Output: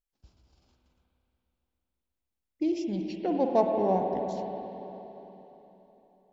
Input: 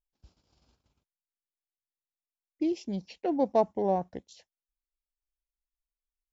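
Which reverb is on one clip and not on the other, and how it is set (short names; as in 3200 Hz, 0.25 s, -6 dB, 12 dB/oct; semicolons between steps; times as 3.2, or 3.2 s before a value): spring tank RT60 3.7 s, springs 48/52/58 ms, chirp 80 ms, DRR 1.5 dB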